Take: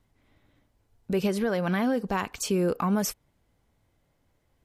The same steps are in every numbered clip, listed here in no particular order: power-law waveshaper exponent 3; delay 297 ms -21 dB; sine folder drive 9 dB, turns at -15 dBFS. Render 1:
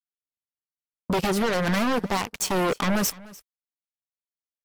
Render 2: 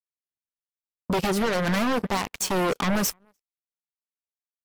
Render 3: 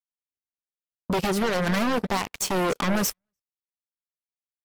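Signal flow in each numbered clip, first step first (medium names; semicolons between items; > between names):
sine folder > power-law waveshaper > delay; delay > sine folder > power-law waveshaper; sine folder > delay > power-law waveshaper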